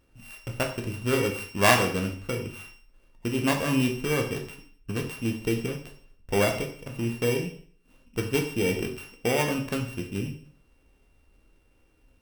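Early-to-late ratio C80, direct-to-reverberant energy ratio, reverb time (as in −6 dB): 12.0 dB, 2.0 dB, 0.50 s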